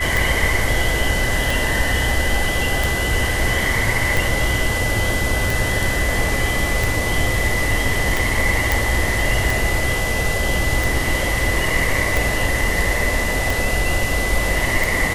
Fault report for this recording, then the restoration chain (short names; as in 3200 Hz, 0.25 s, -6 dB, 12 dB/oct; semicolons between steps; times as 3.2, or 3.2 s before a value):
tick 45 rpm
tone 2000 Hz -23 dBFS
8.72 pop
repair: de-click; notch 2000 Hz, Q 30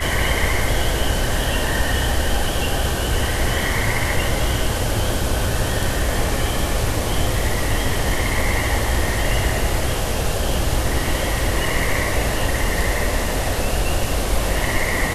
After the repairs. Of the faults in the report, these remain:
none